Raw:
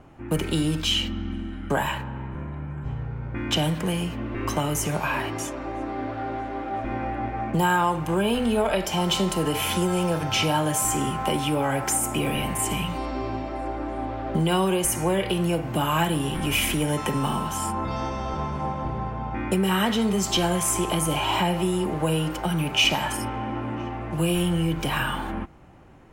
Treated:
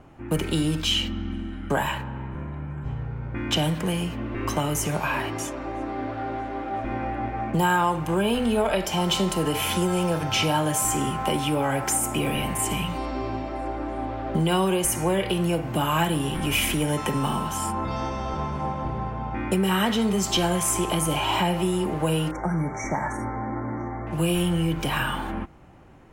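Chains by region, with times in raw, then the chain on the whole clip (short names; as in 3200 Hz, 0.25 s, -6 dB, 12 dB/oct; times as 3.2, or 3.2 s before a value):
22.31–24.07 brick-wall FIR band-stop 2300–5500 Hz + air absorption 99 m
whole clip: dry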